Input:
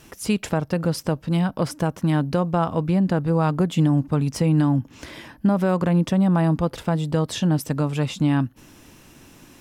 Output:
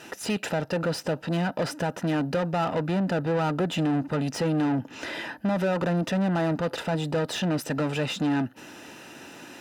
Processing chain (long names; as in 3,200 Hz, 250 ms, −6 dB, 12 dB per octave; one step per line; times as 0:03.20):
mid-hump overdrive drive 26 dB, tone 2,400 Hz, clips at −9 dBFS
notch comb filter 1,100 Hz
level −8 dB